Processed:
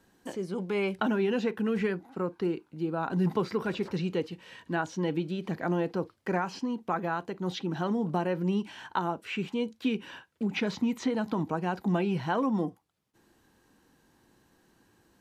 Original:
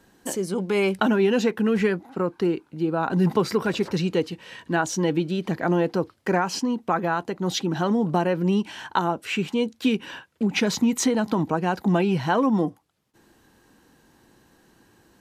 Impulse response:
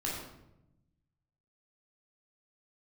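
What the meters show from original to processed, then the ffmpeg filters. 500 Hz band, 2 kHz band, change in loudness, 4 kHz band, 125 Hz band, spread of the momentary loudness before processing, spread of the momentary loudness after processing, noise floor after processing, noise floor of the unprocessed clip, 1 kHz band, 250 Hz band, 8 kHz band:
−7.5 dB, −7.0 dB, −7.0 dB, −9.5 dB, −6.5 dB, 6 LU, 6 LU, −68 dBFS, −61 dBFS, −7.0 dB, −7.0 dB, −18.0 dB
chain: -filter_complex "[0:a]acrossover=split=4300[link_01][link_02];[link_02]acompressor=threshold=-50dB:ratio=4:attack=1:release=60[link_03];[link_01][link_03]amix=inputs=2:normalize=0,asplit=2[link_04][link_05];[1:a]atrim=start_sample=2205,atrim=end_sample=3528,asetrate=52920,aresample=44100[link_06];[link_05][link_06]afir=irnorm=-1:irlink=0,volume=-19.5dB[link_07];[link_04][link_07]amix=inputs=2:normalize=0,volume=-7.5dB"

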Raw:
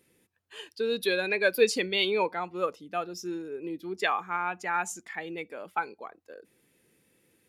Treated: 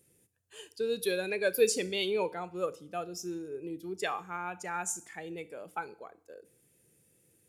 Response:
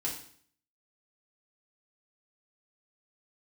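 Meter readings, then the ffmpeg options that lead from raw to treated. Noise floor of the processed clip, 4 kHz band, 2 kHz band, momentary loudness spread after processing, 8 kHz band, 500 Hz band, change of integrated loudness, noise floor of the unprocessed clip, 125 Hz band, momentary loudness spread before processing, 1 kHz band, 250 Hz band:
−69 dBFS, −6.0 dB, −8.0 dB, 18 LU, +3.0 dB, −2.5 dB, −4.0 dB, −71 dBFS, −1.0 dB, 14 LU, −7.0 dB, −3.5 dB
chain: -filter_complex "[0:a]equalizer=frequency=125:width_type=o:width=1:gain=5,equalizer=frequency=250:width_type=o:width=1:gain=-6,equalizer=frequency=1000:width_type=o:width=1:gain=-7,equalizer=frequency=2000:width_type=o:width=1:gain=-7,equalizer=frequency=4000:width_type=o:width=1:gain=-6,equalizer=frequency=8000:width_type=o:width=1:gain=6,asplit=2[link_01][link_02];[1:a]atrim=start_sample=2205,highshelf=frequency=11000:gain=8.5,adelay=33[link_03];[link_02][link_03]afir=irnorm=-1:irlink=0,volume=-20dB[link_04];[link_01][link_04]amix=inputs=2:normalize=0"

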